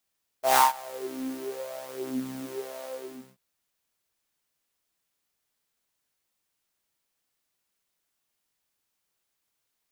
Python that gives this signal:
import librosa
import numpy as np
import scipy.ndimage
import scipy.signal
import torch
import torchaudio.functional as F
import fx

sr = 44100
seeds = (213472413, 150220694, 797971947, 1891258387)

y = fx.sub_patch_wobble(sr, seeds[0], note=48, wave='saw', wave2='saw', interval_st=0, level2_db=-5.0, sub_db=-15.0, noise_db=-6.5, kind='highpass', cutoff_hz=310.0, q=10.0, env_oct=1.0, env_decay_s=1.33, env_sustain_pct=25, attack_ms=143.0, decay_s=0.15, sustain_db=-24.0, release_s=0.51, note_s=2.43, lfo_hz=0.94, wobble_oct=0.7)